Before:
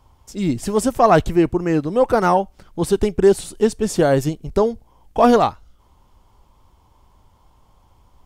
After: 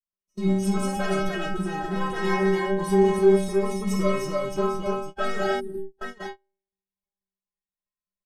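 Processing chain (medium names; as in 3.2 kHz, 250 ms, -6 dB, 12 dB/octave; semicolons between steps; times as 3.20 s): comb filter that takes the minimum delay 0.35 ms; treble shelf 6.5 kHz -6 dB; multi-tap echo 52/62/246/296/804 ms -7.5/-11.5/-19.5/-3.5/-13 dB; compression 1.5:1, threshold -21 dBFS, peak gain reduction 5 dB; waveshaping leveller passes 3; low-pass 12 kHz 12 dB/octave; inharmonic resonator 190 Hz, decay 0.69 s, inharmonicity 0.008; dynamic bell 1.3 kHz, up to +5 dB, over -47 dBFS, Q 1.2; time-frequency box 5.60–5.99 s, 420–8100 Hz -30 dB; gate -36 dBFS, range -27 dB; level rider gain up to 4.5 dB; Shepard-style phaser rising 0.25 Hz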